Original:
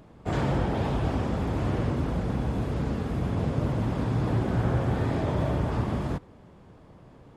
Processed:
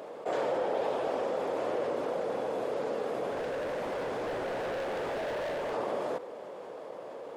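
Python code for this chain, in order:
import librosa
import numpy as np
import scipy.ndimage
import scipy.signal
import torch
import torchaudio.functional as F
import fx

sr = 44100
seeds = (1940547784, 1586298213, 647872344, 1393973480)

y = fx.highpass_res(x, sr, hz=510.0, q=3.4)
y = fx.clip_hard(y, sr, threshold_db=-30.5, at=(3.32, 5.74))
y = fx.env_flatten(y, sr, amount_pct=50)
y = y * 10.0 ** (-6.5 / 20.0)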